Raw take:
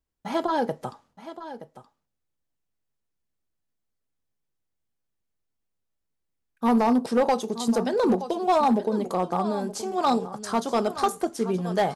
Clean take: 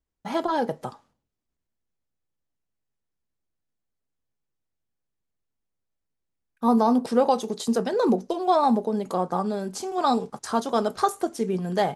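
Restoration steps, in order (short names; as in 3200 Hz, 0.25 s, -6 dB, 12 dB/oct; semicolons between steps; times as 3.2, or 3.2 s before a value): clip repair -15 dBFS; inverse comb 0.923 s -13.5 dB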